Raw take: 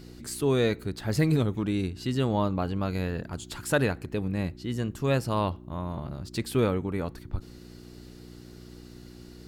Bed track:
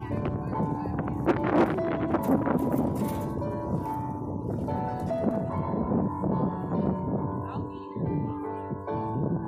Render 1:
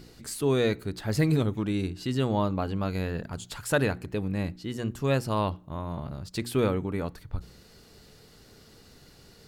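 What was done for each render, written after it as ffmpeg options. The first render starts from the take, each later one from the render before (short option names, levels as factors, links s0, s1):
-af "bandreject=f=60:t=h:w=4,bandreject=f=120:t=h:w=4,bandreject=f=180:t=h:w=4,bandreject=f=240:t=h:w=4,bandreject=f=300:t=h:w=4,bandreject=f=360:t=h:w=4"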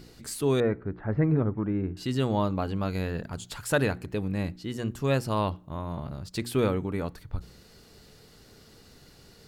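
-filter_complex "[0:a]asettb=1/sr,asplit=3[s0][s1][s2];[s0]atrim=end=0.604[s3];[s1]atrim=start=0.6:end=1.97,asetpts=PTS-STARTPTS,afade=t=in:d=0.004:c=qsin,afade=t=out:st=1.366:d=0.004:c=qsin,lowpass=f=1700:w=0.5412,lowpass=f=1700:w=1.3066[s4];[s2]atrim=start=1.966[s5];[s3][s4]acrossfade=d=0.004:c1=hsin:c2=qsin[s6];[s6][s5]acrossfade=d=0.004:c1=qsin:c2=hsin"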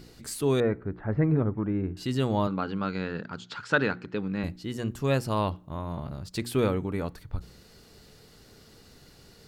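-filter_complex "[0:a]asettb=1/sr,asplit=3[s0][s1][s2];[s0]atrim=end=2.474[s3];[s1]atrim=start=2.47:end=4.44,asetpts=PTS-STARTPTS,afade=t=in:d=0.004:c=qsin,afade=t=out:st=1.966:d=0.004:c=qsin,highpass=170,equalizer=f=190:t=q:w=4:g=3,equalizer=f=660:t=q:w=4:g=-6,equalizer=f=1400:t=q:w=4:g=8,lowpass=f=5300:w=0.5412,lowpass=f=5300:w=1.3066[s4];[s2]atrim=start=4.436[s5];[s3][s4]acrossfade=d=0.004:c1=hsin:c2=qsin[s6];[s6][s5]acrossfade=d=0.004:c1=qsin:c2=hsin"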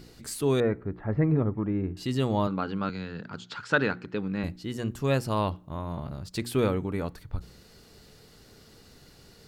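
-filter_complex "[0:a]asettb=1/sr,asplit=3[s0][s1][s2];[s0]atrim=end=0.784[s3];[s1]atrim=start=0.78:end=2.39,asetpts=PTS-STARTPTS,afade=t=in:d=0.004:c=qsin,afade=t=out:st=1.606:d=0.004:c=qsin,bandreject=f=1500:w=11[s4];[s2]atrim=start=2.386[s5];[s3][s4]acrossfade=d=0.004:c1=hsin:c2=qsin[s6];[s6][s5]acrossfade=d=0.004:c1=qsin:c2=hsin,asettb=1/sr,asplit=3[s7][s8][s9];[s7]atrim=end=2.894[s10];[s8]atrim=start=2.89:end=3.34,asetpts=PTS-STARTPTS,afade=t=in:d=0.004:c=qsin,afade=t=out:st=0.446:d=0.004:c=qsin,acrossover=split=190|3000[s11][s12][s13];[s12]acompressor=threshold=0.0126:ratio=4:attack=3.2:release=140:knee=2.83:detection=peak[s14];[s11][s14][s13]amix=inputs=3:normalize=0[s15];[s9]atrim=start=3.336[s16];[s10][s15]acrossfade=d=0.004:c1=hsin:c2=qsin[s17];[s17][s16]acrossfade=d=0.004:c1=qsin:c2=hsin"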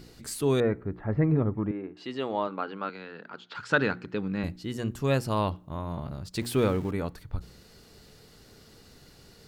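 -filter_complex "[0:a]asettb=1/sr,asplit=3[s0][s1][s2];[s0]atrim=end=1.714[s3];[s1]atrim=start=1.71:end=3.55,asetpts=PTS-STARTPTS,afade=t=in:d=0.004:c=qsin,afade=t=out:st=1.836:d=0.004:c=qsin,highpass=370,lowpass=3200[s4];[s2]atrim=start=3.546[s5];[s3][s4]acrossfade=d=0.004:c1=hsin:c2=qsin[s6];[s6][s5]acrossfade=d=0.004:c1=qsin:c2=hsin,asettb=1/sr,asplit=3[s7][s8][s9];[s7]atrim=end=6.414[s10];[s8]atrim=start=6.41:end=6.91,asetpts=PTS-STARTPTS,afade=t=in:d=0.004:c=qsin,afade=t=out:st=0.496:d=0.004:c=qsin,aeval=exprs='val(0)+0.5*0.00891*sgn(val(0))':c=same[s11];[s9]atrim=start=6.906[s12];[s10][s11]acrossfade=d=0.004:c1=hsin:c2=qsin[s13];[s13][s12]acrossfade=d=0.004:c1=qsin:c2=hsin"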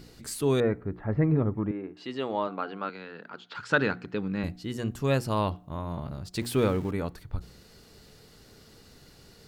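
-af "bandreject=f=358.8:t=h:w=4,bandreject=f=717.6:t=h:w=4"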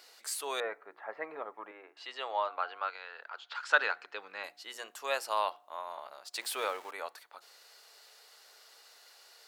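-af "highpass=f=650:w=0.5412,highpass=f=650:w=1.3066"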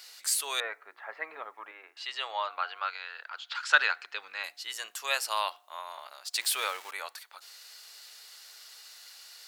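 -af "tiltshelf=f=970:g=-9.5"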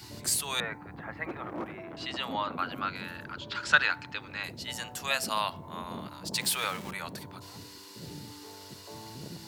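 -filter_complex "[1:a]volume=0.168[s0];[0:a][s0]amix=inputs=2:normalize=0"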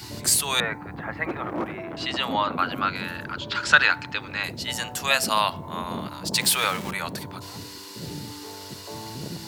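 -af "volume=2.51,alimiter=limit=0.794:level=0:latency=1"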